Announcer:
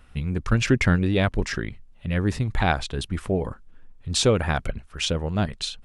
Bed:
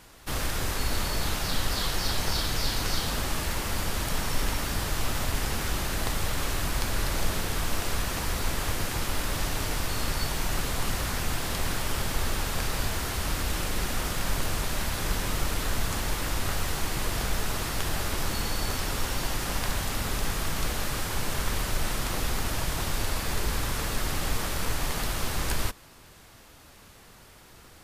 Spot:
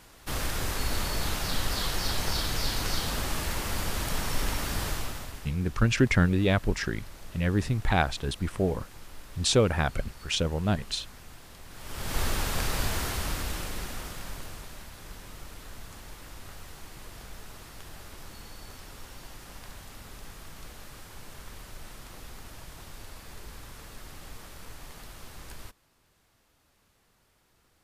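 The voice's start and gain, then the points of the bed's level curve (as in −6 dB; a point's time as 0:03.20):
5.30 s, −2.5 dB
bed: 0:04.89 −1.5 dB
0:05.56 −19 dB
0:11.68 −19 dB
0:12.18 0 dB
0:13.02 0 dB
0:14.90 −16 dB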